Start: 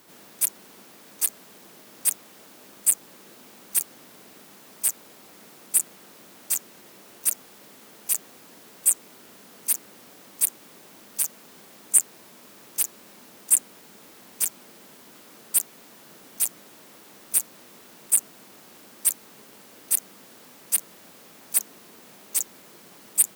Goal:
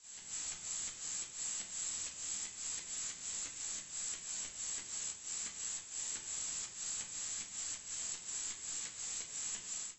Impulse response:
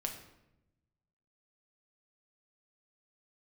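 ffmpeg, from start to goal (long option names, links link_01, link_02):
-filter_complex "[0:a]acompressor=threshold=-36dB:ratio=6,tiltshelf=frequency=970:gain=4,lowpass=frequency=3000:width_type=q:width=0.5098,lowpass=frequency=3000:width_type=q:width=0.6013,lowpass=frequency=3000:width_type=q:width=0.9,lowpass=frequency=3000:width_type=q:width=2.563,afreqshift=-3500[link_01];[1:a]atrim=start_sample=2205,asetrate=26019,aresample=44100[link_02];[link_01][link_02]afir=irnorm=-1:irlink=0,dynaudnorm=framelen=200:gausssize=5:maxgain=13dB,lowshelf=frequency=160:gain=8,asetrate=103194,aresample=44100,volume=-7dB"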